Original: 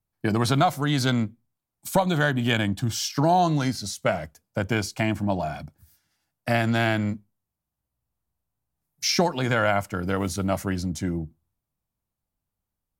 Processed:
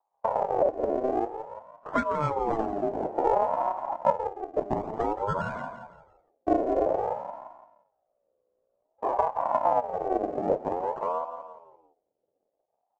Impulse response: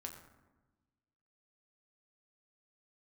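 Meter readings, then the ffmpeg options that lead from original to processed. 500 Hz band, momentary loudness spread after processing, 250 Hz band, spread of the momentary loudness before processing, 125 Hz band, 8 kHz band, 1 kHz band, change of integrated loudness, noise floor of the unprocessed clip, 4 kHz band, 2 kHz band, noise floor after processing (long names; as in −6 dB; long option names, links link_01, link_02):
+1.0 dB, 13 LU, −8.5 dB, 10 LU, −16.0 dB, below −25 dB, +1.0 dB, −3.5 dB, −85 dBFS, below −25 dB, −14.0 dB, −80 dBFS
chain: -filter_complex "[0:a]equalizer=frequency=600:width_type=o:width=0.27:gain=13,bandreject=frequency=50:width_type=h:width=6,bandreject=frequency=100:width_type=h:width=6,bandreject=frequency=150:width_type=h:width=6,bandreject=frequency=200:width_type=h:width=6,bandreject=frequency=250:width_type=h:width=6,bandreject=frequency=300:width_type=h:width=6,aresample=16000,acrusher=samples=25:mix=1:aa=0.000001:lfo=1:lforange=40:lforate=0.33,aresample=44100,firequalizer=gain_entry='entry(310,0);entry(630,-10);entry(3100,-26)':delay=0.05:min_phase=1,asplit=2[link_01][link_02];[link_02]aecho=0:1:171|342|513|684:0.2|0.0738|0.0273|0.0101[link_03];[link_01][link_03]amix=inputs=2:normalize=0,acompressor=threshold=-36dB:ratio=2,aeval=exprs='val(0)*sin(2*PI*670*n/s+670*0.25/0.53*sin(2*PI*0.53*n/s))':channel_layout=same,volume=8dB"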